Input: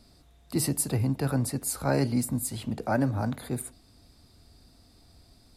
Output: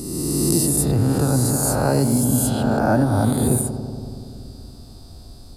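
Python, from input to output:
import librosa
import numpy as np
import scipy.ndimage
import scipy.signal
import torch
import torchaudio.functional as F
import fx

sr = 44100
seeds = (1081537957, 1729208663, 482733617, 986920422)

y = fx.spec_swells(x, sr, rise_s=1.64)
y = fx.low_shelf(y, sr, hz=84.0, db=6.5)
y = fx.echo_filtered(y, sr, ms=94, feedback_pct=82, hz=1900.0, wet_db=-12.0)
y = fx.rider(y, sr, range_db=5, speed_s=0.5)
y = fx.peak_eq(y, sr, hz=2100.0, db=-12.5, octaves=0.71)
y = y * 10.0 ** (5.0 / 20.0)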